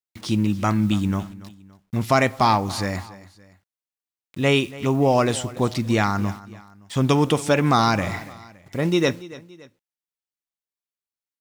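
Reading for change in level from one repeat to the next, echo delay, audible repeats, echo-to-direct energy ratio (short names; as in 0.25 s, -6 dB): -7.0 dB, 0.284 s, 2, -17.5 dB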